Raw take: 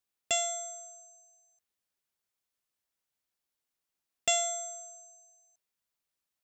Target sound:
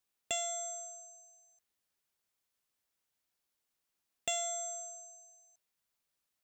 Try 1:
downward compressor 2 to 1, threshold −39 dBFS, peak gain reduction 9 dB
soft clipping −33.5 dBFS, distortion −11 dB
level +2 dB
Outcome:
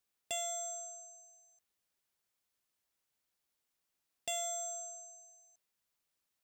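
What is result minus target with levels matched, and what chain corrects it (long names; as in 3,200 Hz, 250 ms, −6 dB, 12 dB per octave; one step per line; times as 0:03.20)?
soft clipping: distortion +9 dB
downward compressor 2 to 1, threshold −39 dBFS, peak gain reduction 9 dB
soft clipping −24 dBFS, distortion −20 dB
level +2 dB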